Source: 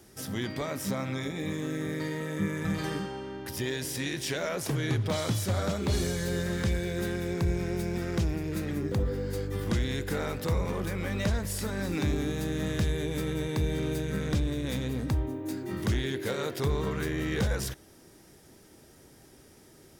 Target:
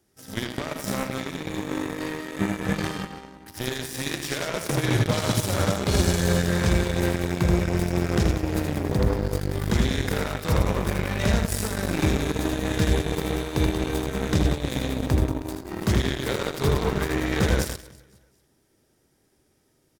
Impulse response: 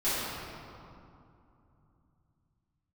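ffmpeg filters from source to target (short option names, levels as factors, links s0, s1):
-af "aecho=1:1:80|184|319.2|495|723.4:0.631|0.398|0.251|0.158|0.1,aeval=exprs='0.188*(cos(1*acos(clip(val(0)/0.188,-1,1)))-cos(1*PI/2))+0.0237*(cos(7*acos(clip(val(0)/0.188,-1,1)))-cos(7*PI/2))':c=same,volume=1.78"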